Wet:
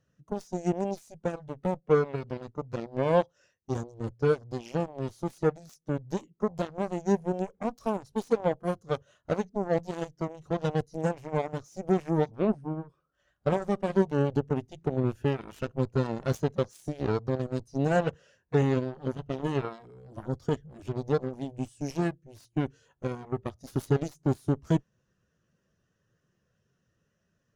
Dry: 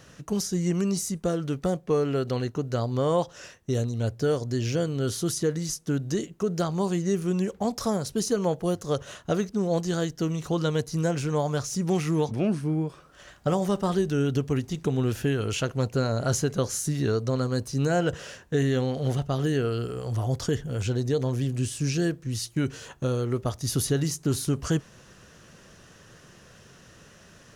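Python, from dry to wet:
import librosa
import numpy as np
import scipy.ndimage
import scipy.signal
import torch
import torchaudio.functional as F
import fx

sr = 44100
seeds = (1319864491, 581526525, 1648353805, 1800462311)

y = fx.cheby_harmonics(x, sr, harmonics=(3, 5, 7, 8), levels_db=(-15, -30, -16, -38), full_scale_db=-13.0)
y = fx.spectral_expand(y, sr, expansion=1.5)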